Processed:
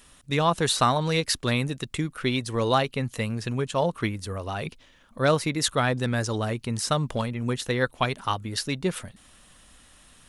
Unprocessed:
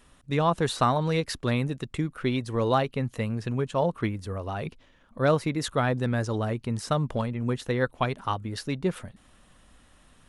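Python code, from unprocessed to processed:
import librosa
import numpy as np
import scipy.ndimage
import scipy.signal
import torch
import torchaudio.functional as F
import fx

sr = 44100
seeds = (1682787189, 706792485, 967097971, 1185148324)

y = fx.high_shelf(x, sr, hz=2300.0, db=10.5)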